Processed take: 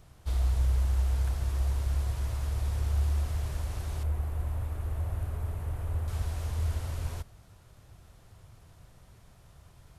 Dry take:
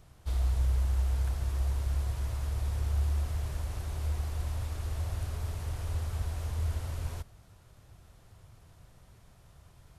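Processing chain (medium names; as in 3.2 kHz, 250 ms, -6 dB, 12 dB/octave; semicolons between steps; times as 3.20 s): 4.03–6.08 s: peaking EQ 5.2 kHz -14.5 dB 1.8 oct; trim +1.5 dB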